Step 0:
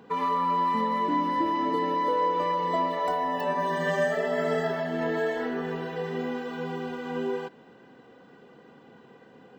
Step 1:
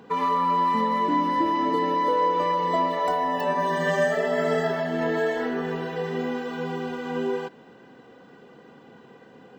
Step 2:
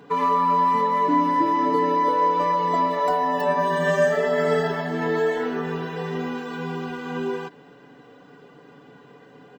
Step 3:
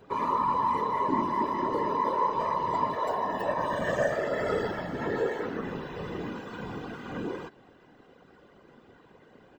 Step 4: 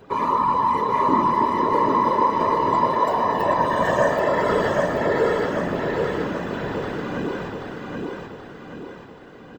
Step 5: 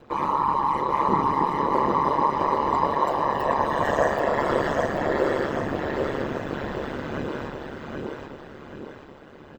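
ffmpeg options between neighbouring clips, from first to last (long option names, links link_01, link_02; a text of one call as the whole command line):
ffmpeg -i in.wav -af "equalizer=frequency=6400:width=1.5:gain=2,volume=3dB" out.wav
ffmpeg -i in.wav -af "aecho=1:1:6.9:0.61" out.wav
ffmpeg -i in.wav -af "afftfilt=real='hypot(re,im)*cos(2*PI*random(0))':imag='hypot(re,im)*sin(2*PI*random(1))':win_size=512:overlap=0.75,volume=-1.5dB" out.wav
ffmpeg -i in.wav -af "aecho=1:1:780|1560|2340|3120|3900|4680:0.708|0.333|0.156|0.0735|0.0345|0.0162,volume=6.5dB" out.wav
ffmpeg -i in.wav -af "aeval=exprs='val(0)*sin(2*PI*71*n/s)':channel_layout=same" out.wav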